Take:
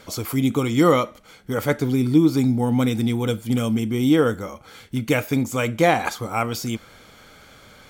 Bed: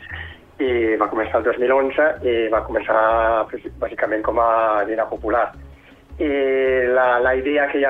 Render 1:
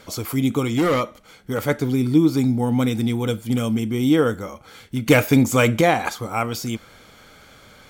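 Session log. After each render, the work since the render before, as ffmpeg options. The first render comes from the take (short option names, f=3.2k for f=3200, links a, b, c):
-filter_complex "[0:a]asettb=1/sr,asplit=3[a][b][c];[a]atrim=end=0.704[d];[b]atrim=start=0.7:end=1.59,asetpts=PTS-STARTPTS,afade=t=in:d=0.004:c=qsin,afade=t=out:st=0.886:d=0.004:c=qsin,asoftclip=type=hard:threshold=-15dB[e];[c]atrim=start=1.586[f];[d][e]acrossfade=d=0.004:c1=hsin:c2=qsin[g];[g][f]acrossfade=d=0.004:c1=qsin:c2=hsin,asettb=1/sr,asplit=3[h][i][j];[h]atrim=end=5.064[k];[i]atrim=start=5.06:end=5.81,asetpts=PTS-STARTPTS,afade=t=in:d=0.004:c=qsin,afade=t=out:st=0.746:d=0.004:c=qsin,acontrast=74[l];[j]atrim=start=5.806[m];[k][l]acrossfade=d=0.004:c1=hsin:c2=qsin[n];[n][m]acrossfade=d=0.004:c1=qsin:c2=hsin"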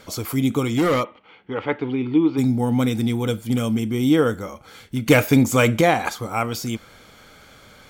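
-filter_complex "[0:a]asplit=3[a][b][c];[a]afade=t=out:st=1.03:d=0.02[d];[b]highpass=150,equalizer=f=150:t=q:w=4:g=-8,equalizer=f=220:t=q:w=4:g=-6,equalizer=f=610:t=q:w=4:g=-6,equalizer=f=890:t=q:w=4:g=5,equalizer=f=1.5k:t=q:w=4:g=-4,equalizer=f=2.8k:t=q:w=4:g=6,lowpass=f=3k:w=0.5412,lowpass=f=3k:w=1.3066,afade=t=in:st=1.03:d=0.02,afade=t=out:st=2.37:d=0.02[e];[c]afade=t=in:st=2.37:d=0.02[f];[d][e][f]amix=inputs=3:normalize=0"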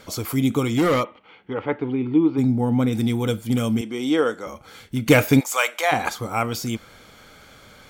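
-filter_complex "[0:a]asettb=1/sr,asplit=3[a][b][c];[a]atrim=end=1.534[d];[b]atrim=start=1.53:end=2.93,asetpts=PTS-STARTPTS,afade=t=in:d=0.004:c=qsin,afade=t=out:st=1.396:d=0.004:c=qsin,highshelf=f=2.4k:g=-10[e];[c]atrim=start=2.926[f];[d][e]acrossfade=d=0.004:c1=hsin:c2=qsin[g];[g][f]acrossfade=d=0.004:c1=qsin:c2=hsin,asettb=1/sr,asplit=3[h][i][j];[h]atrim=end=3.814[k];[i]atrim=start=3.81:end=4.47,asetpts=PTS-STARTPTS,afade=t=in:d=0.004:c=qsin,afade=t=out:st=0.656:d=0.004:c=qsin,highpass=340,lowpass=7.7k[l];[j]atrim=start=4.466[m];[k][l]acrossfade=d=0.004:c1=hsin:c2=qsin[n];[n][m]acrossfade=d=0.004:c1=qsin:c2=hsin,asplit=3[o][p][q];[o]afade=t=out:st=5.39:d=0.02[r];[p]highpass=f=670:w=0.5412,highpass=f=670:w=1.3066,afade=t=in:st=5.39:d=0.02,afade=t=out:st=5.91:d=0.02[s];[q]afade=t=in:st=5.91:d=0.02[t];[r][s][t]amix=inputs=3:normalize=0"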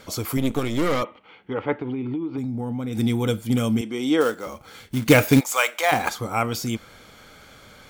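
-filter_complex "[0:a]asettb=1/sr,asplit=3[a][b][c];[a]atrim=end=0.374[d];[b]atrim=start=0.37:end=1.02,asetpts=PTS-STARTPTS,afade=t=in:d=0.004:c=qsin,afade=t=out:st=0.646:d=0.004:c=qsin,aeval=exprs='if(lt(val(0),0),0.251*val(0),val(0))':c=same[e];[c]atrim=start=1.016[f];[d][e]acrossfade=d=0.004:c1=hsin:c2=qsin[g];[g][f]acrossfade=d=0.004:c1=qsin:c2=hsin,asettb=1/sr,asplit=3[h][i][j];[h]atrim=end=1.744[k];[i]atrim=start=1.74:end=2.97,asetpts=PTS-STARTPTS,afade=t=in:d=0.004:c=qsin,afade=t=out:st=1.226:d=0.004:c=qsin,acompressor=threshold=-24dB:ratio=12:attack=3.2:release=140:knee=1:detection=peak[l];[j]atrim=start=2.966[m];[k][l]acrossfade=d=0.004:c1=hsin:c2=qsin[n];[n][m]acrossfade=d=0.004:c1=qsin:c2=hsin,asplit=3[o][p][q];[o]afade=t=out:st=4.2:d=0.02[r];[p]acrusher=bits=4:mode=log:mix=0:aa=0.000001,afade=t=in:st=4.2:d=0.02,afade=t=out:st=6.1:d=0.02[s];[q]afade=t=in:st=6.1:d=0.02[t];[r][s][t]amix=inputs=3:normalize=0"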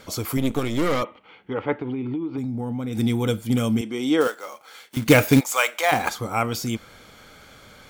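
-filter_complex "[0:a]asettb=1/sr,asplit=3[a][b][c];[a]atrim=end=4.274[d];[b]atrim=start=4.27:end=4.97,asetpts=PTS-STARTPTS,afade=t=in:d=0.004:c=qsin,afade=t=out:st=0.696:d=0.004:c=qsin,highpass=600[e];[c]atrim=start=4.966[f];[d][e]acrossfade=d=0.004:c1=hsin:c2=qsin[g];[g][f]acrossfade=d=0.004:c1=qsin:c2=hsin"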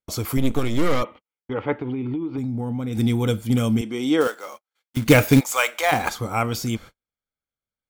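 -af "agate=range=-49dB:threshold=-39dB:ratio=16:detection=peak,lowshelf=f=75:g=10"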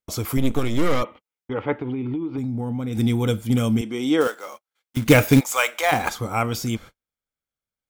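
-af "bandreject=f=4.4k:w=22"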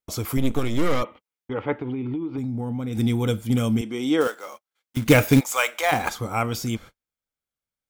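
-af "volume=-1.5dB"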